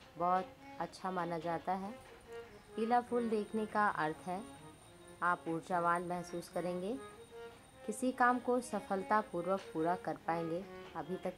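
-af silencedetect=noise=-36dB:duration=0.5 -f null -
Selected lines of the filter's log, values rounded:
silence_start: 1.87
silence_end: 2.78 | silence_duration: 0.91
silence_start: 4.39
silence_end: 5.22 | silence_duration: 0.83
silence_start: 6.95
silence_end: 7.89 | silence_duration: 0.93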